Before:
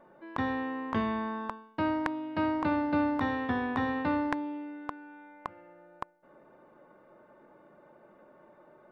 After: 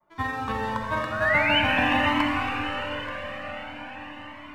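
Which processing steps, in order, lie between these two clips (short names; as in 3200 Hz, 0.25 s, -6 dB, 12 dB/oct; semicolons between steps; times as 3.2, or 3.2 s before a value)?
expander -56 dBFS; bell 320 Hz -9.5 dB 0.93 oct; sample leveller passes 2; painted sound rise, 2.21–3.12, 1400–3100 Hz -24 dBFS; granular stretch 0.51×, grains 85 ms; diffused feedback echo 1.159 s, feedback 56%, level -16 dB; reverb RT60 5.4 s, pre-delay 25 ms, DRR -2 dB; cascading flanger rising 0.46 Hz; gain +3.5 dB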